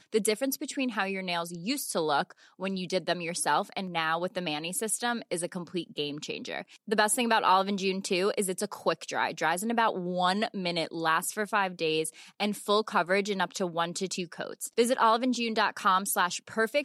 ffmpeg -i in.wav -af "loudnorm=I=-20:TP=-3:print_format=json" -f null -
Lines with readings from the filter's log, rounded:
"input_i" : "-28.7",
"input_tp" : "-9.4",
"input_lra" : "3.3",
"input_thresh" : "-38.8",